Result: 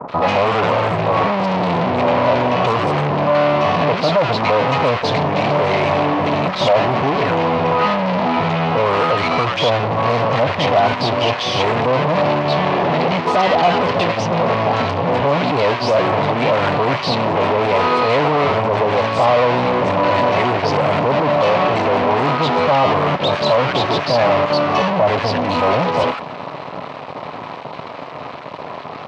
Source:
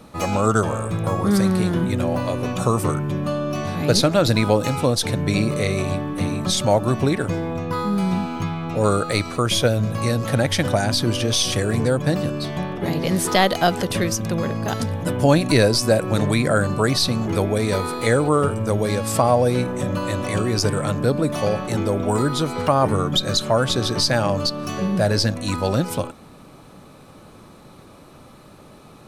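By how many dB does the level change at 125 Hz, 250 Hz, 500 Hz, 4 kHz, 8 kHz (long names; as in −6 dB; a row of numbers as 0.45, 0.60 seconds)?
−1.0 dB, 0.0 dB, +6.0 dB, +1.5 dB, below −10 dB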